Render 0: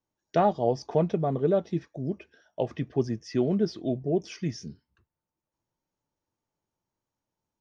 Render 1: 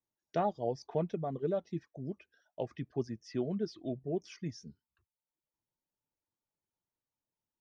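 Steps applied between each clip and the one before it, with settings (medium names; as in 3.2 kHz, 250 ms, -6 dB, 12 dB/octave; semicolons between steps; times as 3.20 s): reverb removal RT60 0.63 s; trim -8.5 dB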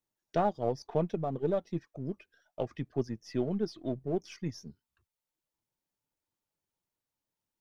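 partial rectifier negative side -3 dB; trim +4 dB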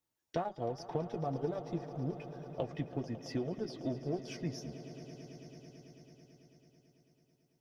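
compression, threshold -33 dBFS, peak gain reduction 10.5 dB; comb of notches 200 Hz; on a send: echo with a slow build-up 110 ms, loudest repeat 5, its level -17 dB; on the sum: trim +2.5 dB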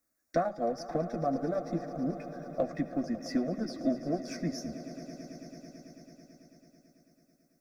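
static phaser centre 610 Hz, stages 8; on a send at -19 dB: reverberation RT60 0.30 s, pre-delay 63 ms; on the sum: trim +9 dB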